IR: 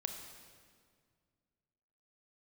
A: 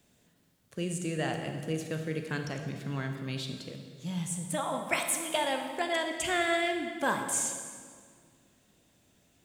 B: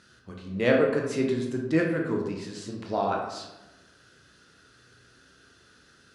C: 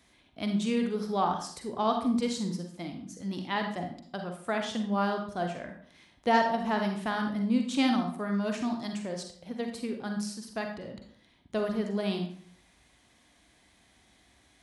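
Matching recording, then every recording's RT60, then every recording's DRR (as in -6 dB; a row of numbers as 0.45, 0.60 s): A; 2.0, 1.0, 0.55 s; 4.5, -0.5, 3.5 dB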